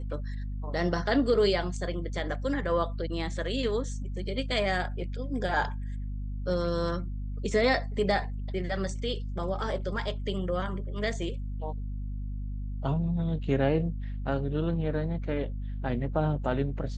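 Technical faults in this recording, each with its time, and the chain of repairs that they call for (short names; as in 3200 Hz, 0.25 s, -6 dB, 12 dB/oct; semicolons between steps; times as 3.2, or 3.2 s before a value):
hum 50 Hz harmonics 5 -34 dBFS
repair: de-hum 50 Hz, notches 5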